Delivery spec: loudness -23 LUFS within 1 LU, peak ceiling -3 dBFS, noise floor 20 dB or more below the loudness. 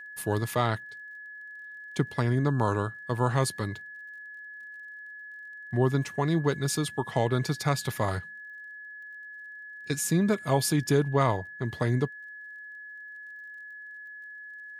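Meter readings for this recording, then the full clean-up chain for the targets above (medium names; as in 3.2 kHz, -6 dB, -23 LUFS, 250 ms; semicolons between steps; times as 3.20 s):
tick rate 36 per s; steady tone 1.7 kHz; tone level -41 dBFS; loudness -28.0 LUFS; peak level -11.0 dBFS; loudness target -23.0 LUFS
-> de-click; band-stop 1.7 kHz, Q 30; trim +5 dB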